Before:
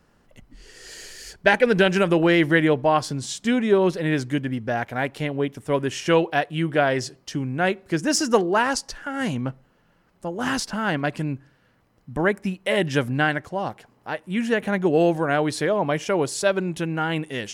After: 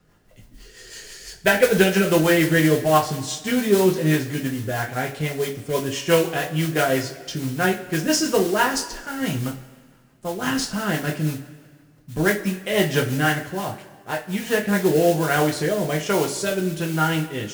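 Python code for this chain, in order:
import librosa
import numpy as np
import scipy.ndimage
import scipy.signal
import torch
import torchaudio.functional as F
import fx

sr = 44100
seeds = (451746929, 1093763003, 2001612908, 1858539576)

y = fx.mod_noise(x, sr, seeds[0], snr_db=14)
y = fx.rotary_switch(y, sr, hz=6.0, then_hz=1.2, switch_at_s=14.16)
y = fx.rev_double_slope(y, sr, seeds[1], early_s=0.24, late_s=1.7, knee_db=-19, drr_db=-0.5)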